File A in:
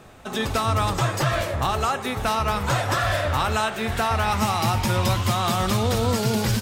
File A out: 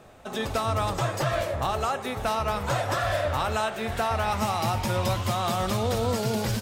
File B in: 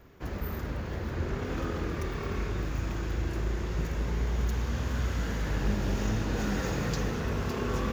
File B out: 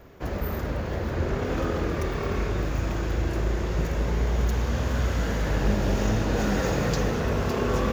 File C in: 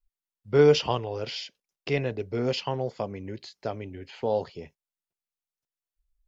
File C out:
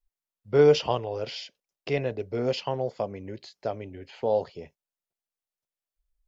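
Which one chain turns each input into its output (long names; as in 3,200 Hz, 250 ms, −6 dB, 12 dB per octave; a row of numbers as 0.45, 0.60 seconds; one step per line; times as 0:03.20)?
parametric band 600 Hz +5.5 dB 0.87 octaves
loudness normalisation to −27 LKFS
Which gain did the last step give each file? −5.5, +4.5, −2.5 decibels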